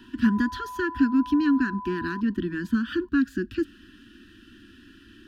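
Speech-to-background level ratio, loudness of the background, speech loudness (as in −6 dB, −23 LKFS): 13.0 dB, −38.5 LKFS, −25.5 LKFS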